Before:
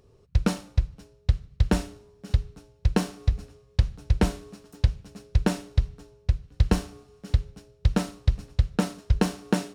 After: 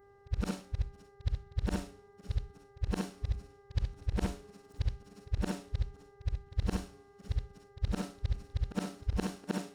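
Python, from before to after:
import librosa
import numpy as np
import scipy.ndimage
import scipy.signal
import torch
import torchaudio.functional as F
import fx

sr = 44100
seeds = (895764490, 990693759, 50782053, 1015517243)

y = fx.frame_reverse(x, sr, frame_ms=139.0)
y = fx.dmg_buzz(y, sr, base_hz=400.0, harmonics=5, level_db=-54.0, tilt_db=-7, odd_only=False)
y = F.gain(torch.from_numpy(y), -7.0).numpy()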